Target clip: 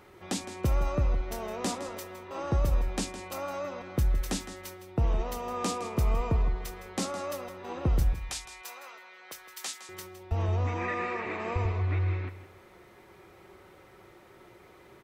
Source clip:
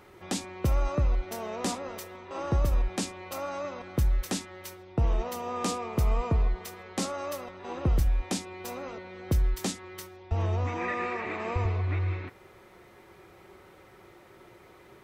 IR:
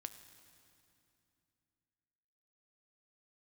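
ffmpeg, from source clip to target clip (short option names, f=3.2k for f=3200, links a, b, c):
-filter_complex "[0:a]asettb=1/sr,asplit=3[a][b][c];[a]atrim=end=8.134[d];[b]atrim=start=8.13:end=9.89,asetpts=PTS-STARTPTS,afade=t=in:d=0.004:c=qsin,afade=t=out:st=1.756:d=0.004:c=qsin,highpass=1.1k[e];[c]atrim=start=9.886[f];[d][e]acrossfade=d=0.004:c1=hsin:c2=qsin[g];[g][f]acrossfade=d=0.004:c1=qsin:c2=hsin,aecho=1:1:162|324|486:0.224|0.0493|0.0108,volume=-1dB"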